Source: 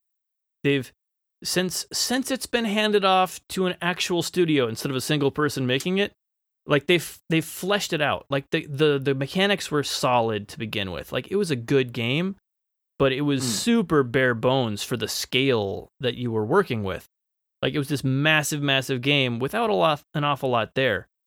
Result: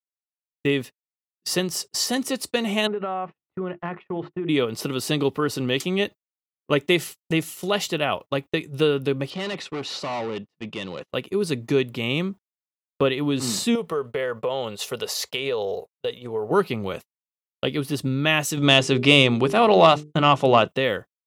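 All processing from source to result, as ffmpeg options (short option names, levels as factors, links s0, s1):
-filter_complex "[0:a]asettb=1/sr,asplit=3[s0][s1][s2];[s0]atrim=end=2.874[s3];[s1]atrim=start=2.87:end=4.49,asetpts=PTS-STARTPTS,afade=t=in:d=0.004:c=qsin,afade=t=out:st=1.616:d=0.004:c=qsin,lowpass=f=1900:w=0.5412,lowpass=f=1900:w=1.3066,bandreject=f=50:t=h:w=6,bandreject=f=100:t=h:w=6,bandreject=f=150:t=h:w=6,bandreject=f=200:t=h:w=6,bandreject=f=250:t=h:w=6,bandreject=f=300:t=h:w=6,bandreject=f=350:t=h:w=6,acompressor=threshold=0.0708:ratio=12:attack=3.2:release=140:knee=1:detection=peak[s4];[s2]atrim=start=4.486[s5];[s3][s4]acrossfade=d=0.004:c1=hsin:c2=qsin[s6];[s6][s5]acrossfade=d=0.004:c1=qsin:c2=hsin,asettb=1/sr,asplit=3[s7][s8][s9];[s7]atrim=end=9.304[s10];[s8]atrim=start=9.3:end=11.1,asetpts=PTS-STARTPTS,afade=t=in:d=0.004:c=qsin,afade=t=out:st=1.796:d=0.004:c=qsin,volume=20,asoftclip=hard,volume=0.0501,highpass=120,lowpass=4900[s11];[s9]atrim=start=11.096[s12];[s10][s11]acrossfade=d=0.004:c1=hsin:c2=qsin[s13];[s13][s12]acrossfade=d=0.004:c1=qsin:c2=hsin,asettb=1/sr,asplit=3[s14][s15][s16];[s14]atrim=end=13.754[s17];[s15]atrim=start=13.75:end=16.51,asetpts=PTS-STARTPTS,afade=t=in:d=0.004:c=qsin,afade=t=out:st=2.756:d=0.004:c=qsin,lowshelf=f=380:t=q:w=3:g=-6,acompressor=threshold=0.0794:ratio=4:attack=3.2:release=140:knee=1:detection=peak[s18];[s16]atrim=start=16.506[s19];[s17][s18]acrossfade=d=0.004:c1=hsin:c2=qsin[s20];[s20][s19]acrossfade=d=0.004:c1=qsin:c2=hsin,asettb=1/sr,asplit=3[s21][s22][s23];[s21]atrim=end=18.574[s24];[s22]atrim=start=18.57:end=20.68,asetpts=PTS-STARTPTS,afade=t=in:d=0.004:c=qsin,afade=t=out:st=2.106:d=0.004:c=qsin,lowpass=f=8700:w=0.5412,lowpass=f=8700:w=1.3066,bandreject=f=50:t=h:w=6,bandreject=f=100:t=h:w=6,bandreject=f=150:t=h:w=6,bandreject=f=200:t=h:w=6,bandreject=f=250:t=h:w=6,bandreject=f=300:t=h:w=6,bandreject=f=350:t=h:w=6,bandreject=f=400:t=h:w=6,bandreject=f=450:t=h:w=6,acontrast=85[s25];[s23]atrim=start=20.676[s26];[s24][s25]acrossfade=d=0.004:c1=hsin:c2=qsin[s27];[s27][s26]acrossfade=d=0.004:c1=qsin:c2=hsin,highpass=120,bandreject=f=1600:w=5.4,agate=range=0.0141:threshold=0.02:ratio=16:detection=peak"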